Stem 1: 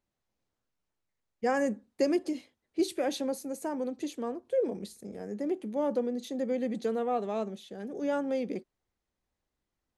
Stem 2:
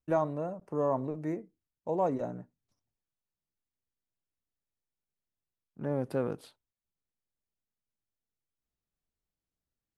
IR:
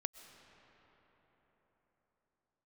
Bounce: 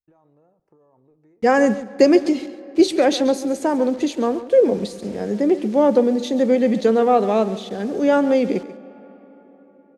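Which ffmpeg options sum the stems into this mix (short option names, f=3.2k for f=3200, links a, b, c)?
-filter_complex "[0:a]dynaudnorm=f=190:g=13:m=10dB,acrusher=bits=7:mix=0:aa=0.000001,volume=1.5dB,asplit=3[a][b][c];[b]volume=-6.5dB[d];[c]volume=-12dB[e];[1:a]aecho=1:1:2.4:0.41,alimiter=level_in=2.5dB:limit=-24dB:level=0:latency=1:release=22,volume=-2.5dB,acompressor=threshold=-40dB:ratio=6,volume=-16.5dB,asplit=3[f][g][h];[g]volume=-10dB[i];[h]volume=-19dB[j];[2:a]atrim=start_sample=2205[k];[d][i]amix=inputs=2:normalize=0[l];[l][k]afir=irnorm=-1:irlink=0[m];[e][j]amix=inputs=2:normalize=0,aecho=0:1:138:1[n];[a][f][m][n]amix=inputs=4:normalize=0,lowpass=6.6k"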